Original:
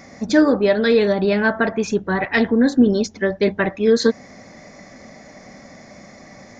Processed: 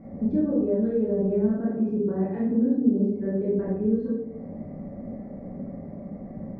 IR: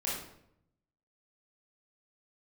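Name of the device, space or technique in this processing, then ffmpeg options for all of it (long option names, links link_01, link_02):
television next door: -filter_complex "[0:a]asettb=1/sr,asplit=3[link_01][link_02][link_03];[link_01]atrim=end=1.484[link_04];[link_02]atrim=start=1.48:end=3.59,asetpts=PTS-STARTPTS,afade=type=in:duration=0.004:curve=qsin,afade=type=out:start_time=2.106:duration=0.004:curve=qsin,highpass=130[link_05];[link_03]atrim=start=3.586[link_06];[link_04][link_05]acrossfade=duration=0.004:curve1=hsin:curve2=qsin[link_07];[link_07][link_06]acrossfade=duration=0.004:curve1=qsin:curve2=hsin,acompressor=threshold=-29dB:ratio=4,lowpass=370[link_08];[1:a]atrim=start_sample=2205[link_09];[link_08][link_09]afir=irnorm=-1:irlink=0,volume=3dB"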